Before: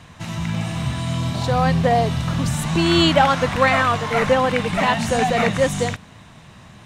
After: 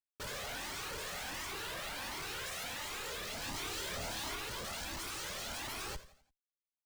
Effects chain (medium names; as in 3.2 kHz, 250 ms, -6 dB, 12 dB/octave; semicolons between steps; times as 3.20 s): 2.33–2.83 s: bass shelf 150 Hz +6 dB; spectral gate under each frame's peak -30 dB weak; peak limiter -27.5 dBFS, peak gain reduction 9 dB; compression 2:1, threshold -48 dBFS, peak gain reduction 8 dB; Schmitt trigger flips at -48 dBFS; 3.40–4.36 s: doubling 28 ms -3 dB; feedback delay 86 ms, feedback 42%, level -14.5 dB; Shepard-style flanger rising 1.4 Hz; trim +9.5 dB